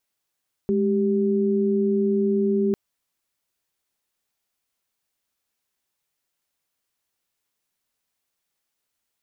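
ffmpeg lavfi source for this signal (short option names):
-f lavfi -i "aevalsrc='0.0891*(sin(2*PI*207.65*t)+sin(2*PI*392*t))':d=2.05:s=44100"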